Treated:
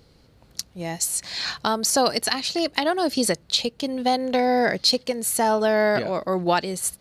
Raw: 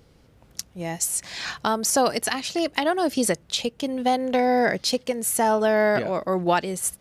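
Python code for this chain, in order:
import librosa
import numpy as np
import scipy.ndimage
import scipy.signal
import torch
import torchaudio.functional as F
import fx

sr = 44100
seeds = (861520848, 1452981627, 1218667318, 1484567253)

y = fx.peak_eq(x, sr, hz=4300.0, db=10.0, octaves=0.28)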